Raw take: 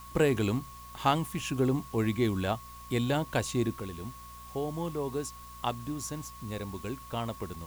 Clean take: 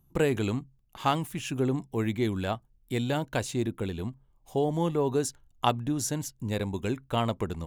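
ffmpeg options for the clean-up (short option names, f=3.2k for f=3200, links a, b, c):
-af "bandreject=f=60:t=h:w=4,bandreject=f=120:t=h:w=4,bandreject=f=180:t=h:w=4,bandreject=f=240:t=h:w=4,bandreject=f=1.1k:w=30,afwtdn=0.002,asetnsamples=n=441:p=0,asendcmd='3.8 volume volume 7dB',volume=0dB"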